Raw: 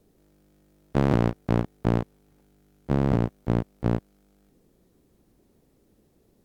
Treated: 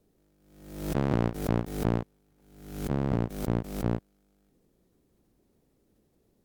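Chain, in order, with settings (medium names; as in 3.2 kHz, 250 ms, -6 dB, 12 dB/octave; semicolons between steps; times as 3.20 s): swell ahead of each attack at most 72 dB/s; trim -6 dB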